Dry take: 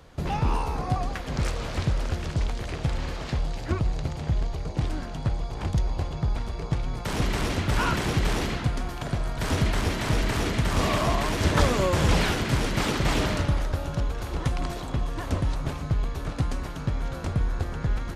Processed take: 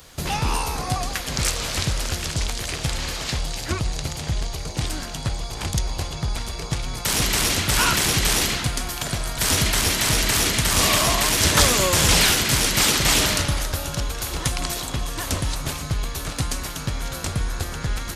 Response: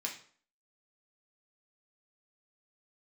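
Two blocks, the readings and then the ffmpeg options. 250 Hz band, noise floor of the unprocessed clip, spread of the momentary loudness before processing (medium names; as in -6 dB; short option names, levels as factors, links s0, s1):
+0.5 dB, -35 dBFS, 7 LU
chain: -af "crystalizer=i=7.5:c=0"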